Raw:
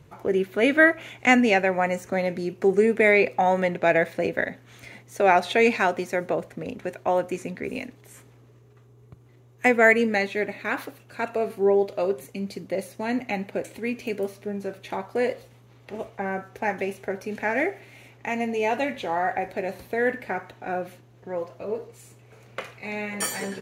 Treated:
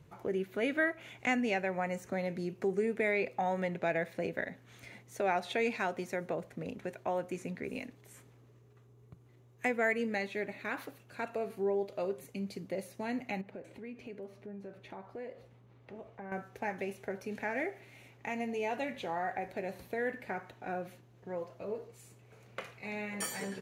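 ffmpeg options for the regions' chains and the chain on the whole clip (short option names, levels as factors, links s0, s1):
-filter_complex "[0:a]asettb=1/sr,asplit=3[s0][s1][s2];[s0]atrim=end=13.414[s3];[s1]atrim=start=13.41:end=16.32,asetpts=PTS-STARTPTS,afade=t=in:d=0.004:c=qsin,afade=t=out:st=2.906:d=0.004:c=qsin,lowpass=f=1800:p=1,acompressor=threshold=0.0126:ratio=2.5:attack=3.2:release=140:knee=1:detection=peak[s4];[s2]atrim=start=16.316[s5];[s3][s4]acrossfade=d=0.004:c1=hsin:c2=qsin[s6];[s6][s5]acrossfade=d=0.004:c1=qsin:c2=hsin,acompressor=threshold=0.0355:ratio=1.5,equalizer=f=170:w=3.9:g=4,volume=0.422"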